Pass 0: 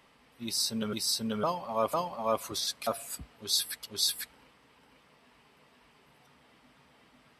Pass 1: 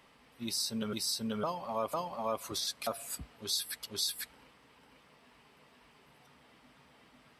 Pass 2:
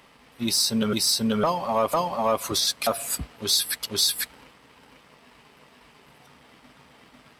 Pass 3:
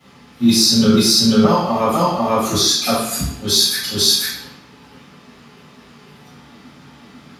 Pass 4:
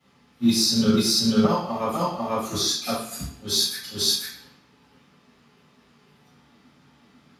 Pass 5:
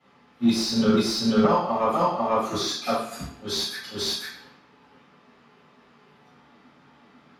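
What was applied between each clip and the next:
compression 2:1, threshold -34 dBFS, peak gain reduction 6.5 dB
waveshaping leveller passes 1; trim +8.5 dB
reverberation RT60 0.70 s, pre-delay 3 ms, DRR -16 dB; trim -10 dB
upward expansion 1.5:1, over -25 dBFS; trim -5.5 dB
overdrive pedal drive 14 dB, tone 1.1 kHz, clips at -7 dBFS

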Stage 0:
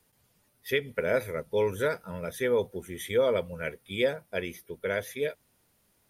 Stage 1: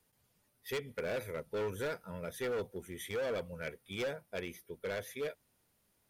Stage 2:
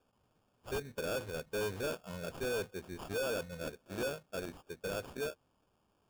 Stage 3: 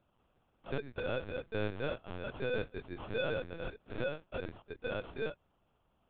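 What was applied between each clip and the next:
overload inside the chain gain 26.5 dB; trim -6 dB
sample-and-hold 22×
LPC vocoder at 8 kHz pitch kept; trim +1 dB

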